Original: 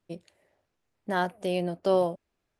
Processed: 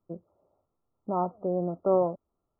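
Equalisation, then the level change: brick-wall FIR low-pass 1.4 kHz; 0.0 dB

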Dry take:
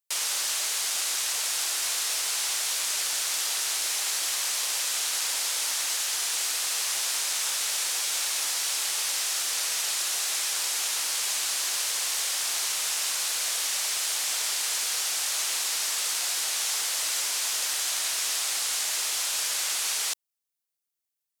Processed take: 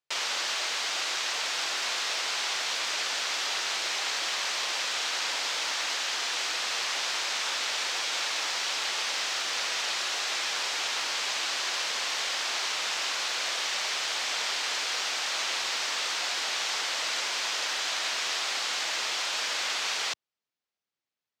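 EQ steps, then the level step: high-pass 100 Hz; distance through air 190 m; treble shelf 8.5 kHz +5.5 dB; +5.5 dB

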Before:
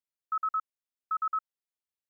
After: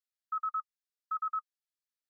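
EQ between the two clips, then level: rippled Chebyshev high-pass 1.2 kHz, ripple 6 dB; 0.0 dB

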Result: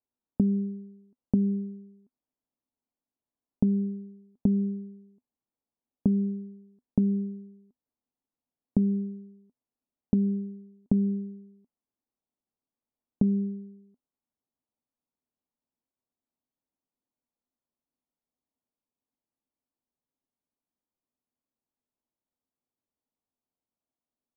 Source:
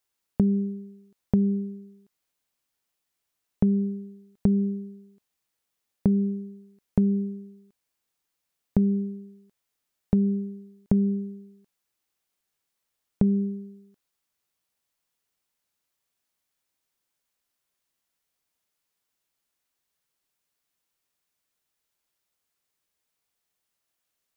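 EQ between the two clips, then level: low-pass 1 kHz 24 dB/octave; peaking EQ 250 Hz +12 dB 0.41 oct; -6.0 dB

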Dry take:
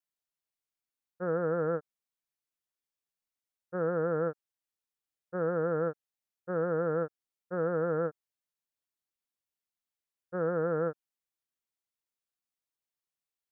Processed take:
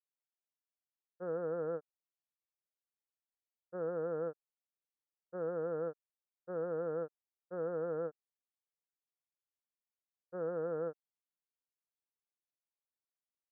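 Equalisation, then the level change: band-pass filter 510 Hz, Q 0.89; distance through air 380 m; peaking EQ 390 Hz -5.5 dB 2.9 oct; 0.0 dB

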